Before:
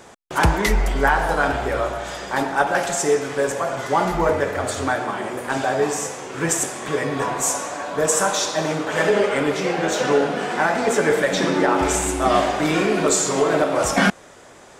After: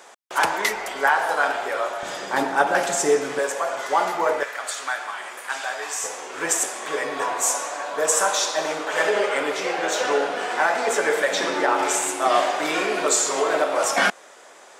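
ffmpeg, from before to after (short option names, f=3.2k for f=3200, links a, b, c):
-af "asetnsamples=n=441:p=0,asendcmd='2.03 highpass f 220;3.39 highpass f 530;4.43 highpass f 1200;6.04 highpass f 500',highpass=580"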